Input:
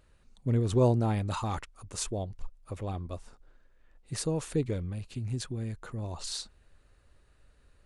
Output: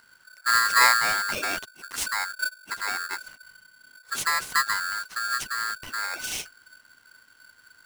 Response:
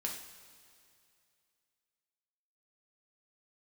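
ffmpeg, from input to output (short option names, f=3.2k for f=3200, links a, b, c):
-filter_complex "[0:a]asettb=1/sr,asplit=3[a][b][c];[a]atrim=end=0.974[d];[b]atrim=start=0.97:end=1.86,asetpts=PTS-STARTPTS,afade=t=in:d=0.004:c=qsin,afade=t=out:st=0.886:d=0.004:c=qsin,aeval=exprs='if(lt(val(0),0),0.708*val(0),val(0))':c=same[e];[c]atrim=start=1.856[f];[d][e]acrossfade=d=0.004:c1=hsin:c2=qsin[g];[g][f]acrossfade=d=0.004:c1=qsin:c2=hsin,aeval=exprs='val(0)*sgn(sin(2*PI*1500*n/s))':c=same,volume=5dB"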